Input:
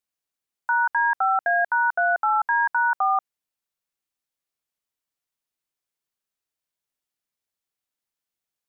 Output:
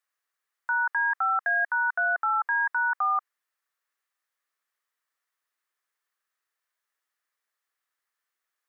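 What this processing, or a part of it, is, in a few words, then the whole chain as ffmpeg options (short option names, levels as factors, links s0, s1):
laptop speaker: -filter_complex "[0:a]asettb=1/sr,asplit=3[s0][s1][s2];[s0]atrim=end=2.064[s3];[s1]atrim=start=2.06:end=2.52,asetpts=PTS-STARTPTS,afade=t=in:d=0.004:c=qsin,afade=t=out:st=0.456:d=0.004:c=qsin,lowshelf=f=430:g=6[s4];[s2]atrim=start=2.516[s5];[s3][s4]acrossfade=d=0.004:c1=hsin:c2=qsin[s6];[s6][s5]acrossfade=d=0.004:c1=qsin:c2=hsin,highpass=f=350:w=0.5412,highpass=f=350:w=1.3066,equalizer=f=1200:t=o:w=0.55:g=9.5,equalizer=f=1800:t=o:w=0.5:g=11,alimiter=limit=0.112:level=0:latency=1:release=17"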